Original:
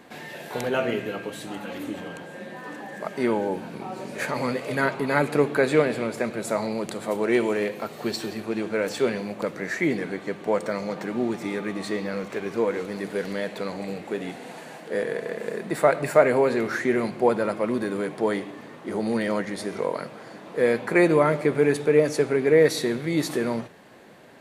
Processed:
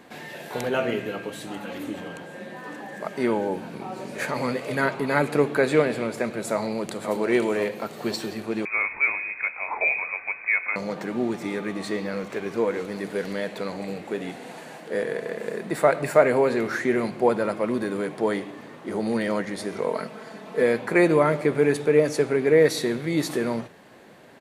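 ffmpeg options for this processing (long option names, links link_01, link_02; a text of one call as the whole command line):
ffmpeg -i in.wav -filter_complex "[0:a]asplit=2[link_01][link_02];[link_02]afade=type=in:start_time=6.53:duration=0.01,afade=type=out:start_time=7.16:duration=0.01,aecho=0:1:510|1020|1530|2040|2550:0.354813|0.159666|0.0718497|0.0323324|0.0145496[link_03];[link_01][link_03]amix=inputs=2:normalize=0,asettb=1/sr,asplit=3[link_04][link_05][link_06];[link_04]atrim=end=8.654[link_07];[link_05]atrim=start=8.65:end=10.76,asetpts=PTS-STARTPTS,afade=type=in:duration=0.004:curve=qsin,afade=type=out:start_time=2.106:duration=0.004:curve=qsin,lowpass=frequency=2300:width_type=q:width=0.5098,lowpass=frequency=2300:width_type=q:width=0.6013,lowpass=frequency=2300:width_type=q:width=0.9,lowpass=frequency=2300:width_type=q:width=2.563,afreqshift=-2700[link_08];[link_06]atrim=start=10.756[link_09];[link_07][link_08]acrossfade=duration=0.004:curve1=hsin:curve2=qsin[link_10];[link_10][link_09]acrossfade=duration=0.004:curve1=qsin:curve2=hsin,asettb=1/sr,asplit=3[link_11][link_12][link_13];[link_11]atrim=end=19.864[link_14];[link_12]atrim=start=19.86:end=20.63,asetpts=PTS-STARTPTS,afade=type=in:duration=0.004:curve=qsin,afade=type=out:start_time=0.766:duration=0.004:curve=qsin,aecho=1:1:4.6:0.65,atrim=end_sample=33957[link_15];[link_13]atrim=start=20.626[link_16];[link_14][link_15]acrossfade=duration=0.004:curve1=hsin:curve2=qsin[link_17];[link_17][link_16]acrossfade=duration=0.004:curve1=qsin:curve2=hsin" out.wav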